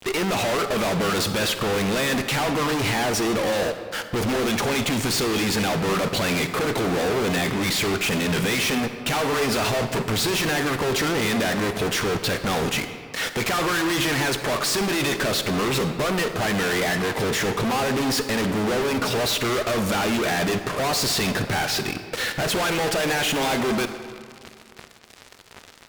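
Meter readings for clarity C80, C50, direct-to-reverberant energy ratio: 10.0 dB, 9.0 dB, 8.5 dB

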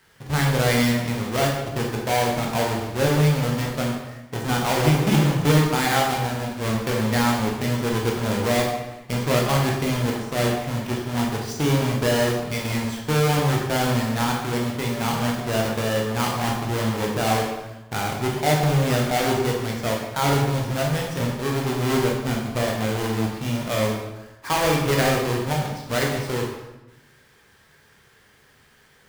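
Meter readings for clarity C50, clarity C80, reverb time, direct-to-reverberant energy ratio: 2.5 dB, 5.0 dB, 1.0 s, -2.0 dB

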